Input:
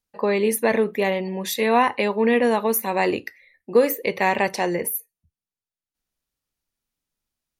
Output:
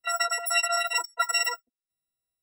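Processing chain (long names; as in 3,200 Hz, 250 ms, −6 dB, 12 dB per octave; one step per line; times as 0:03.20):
every partial snapped to a pitch grid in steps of 6 semitones
change of speed 3.13×
level −8 dB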